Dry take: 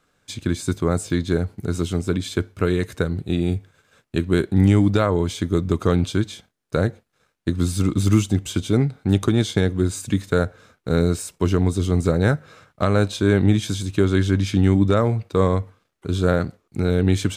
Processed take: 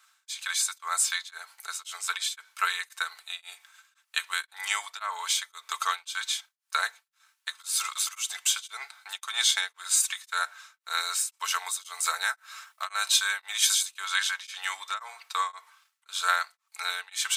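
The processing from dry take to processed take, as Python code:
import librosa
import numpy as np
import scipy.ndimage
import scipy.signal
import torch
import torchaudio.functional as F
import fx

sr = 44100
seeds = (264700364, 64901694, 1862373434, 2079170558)

y = fx.high_shelf(x, sr, hz=9800.0, db=8.0, at=(11.44, 14.0))
y = scipy.signal.sosfilt(scipy.signal.butter(6, 930.0, 'highpass', fs=sr, output='sos'), y)
y = fx.high_shelf(y, sr, hz=3600.0, db=7.0)
y = y + 0.52 * np.pad(y, (int(4.5 * sr / 1000.0), 0))[:len(y)]
y = y * np.abs(np.cos(np.pi * 1.9 * np.arange(len(y)) / sr))
y = y * 10.0 ** (3.0 / 20.0)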